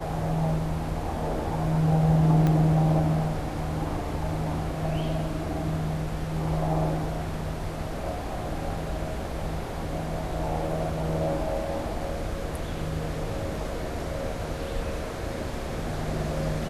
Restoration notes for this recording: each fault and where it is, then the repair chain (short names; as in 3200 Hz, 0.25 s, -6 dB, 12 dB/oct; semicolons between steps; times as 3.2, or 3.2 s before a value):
2.47 pop -14 dBFS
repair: de-click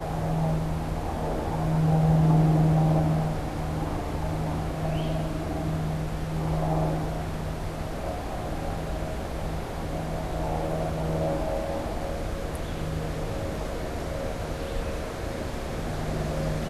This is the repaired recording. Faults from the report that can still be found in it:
2.47 pop